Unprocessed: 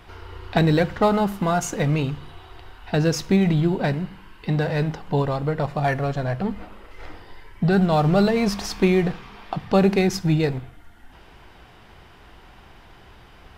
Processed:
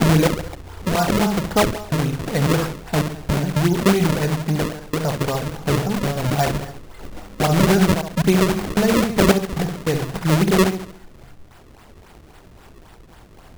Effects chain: slices played last to first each 274 ms, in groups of 3; flutter echo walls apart 11.9 m, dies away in 0.66 s; decimation with a swept rate 33×, swing 160% 3.7 Hz; trim +1.5 dB

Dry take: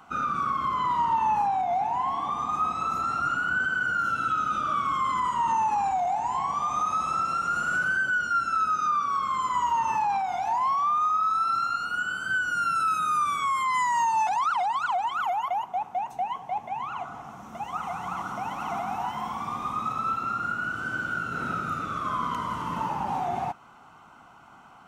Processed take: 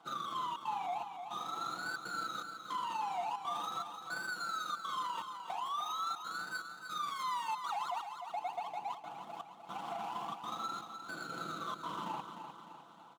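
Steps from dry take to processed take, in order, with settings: median filter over 25 samples; high-pass 260 Hz 12 dB/octave; comb 6 ms, depth 53%; peak limiter -25 dBFS, peak gain reduction 9 dB; granular stretch 0.53×, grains 81 ms; trance gate "xxxxxx.xxxx...x" 161 bpm -24 dB; feedback delay 303 ms, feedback 51%, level -8 dB; trim -5.5 dB

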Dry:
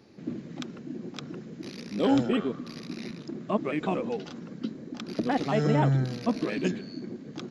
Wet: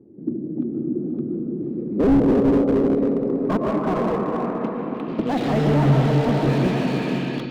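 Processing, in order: 3.53–5.31 s: median filter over 25 samples; low-pass sweep 350 Hz -> 3.5 kHz, 1.67–5.41 s; echo that smears into a reverb 516 ms, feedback 40%, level -5.5 dB; algorithmic reverb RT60 2.6 s, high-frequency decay 0.45×, pre-delay 80 ms, DRR 3 dB; level rider gain up to 3 dB; slew-rate limiter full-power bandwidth 49 Hz; trim +2.5 dB

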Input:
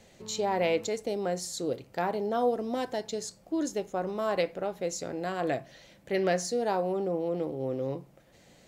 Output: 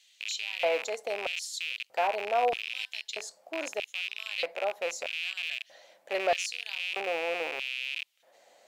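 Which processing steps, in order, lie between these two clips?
rattle on loud lows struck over -46 dBFS, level -21 dBFS; hum notches 60/120/180 Hz; LFO high-pass square 0.79 Hz 650–3100 Hz; trim -3 dB

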